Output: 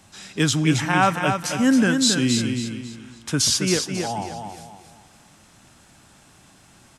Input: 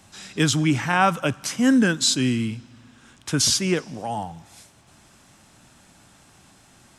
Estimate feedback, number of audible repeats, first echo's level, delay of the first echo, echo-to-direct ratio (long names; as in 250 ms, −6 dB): 34%, 4, −6.0 dB, 272 ms, −5.5 dB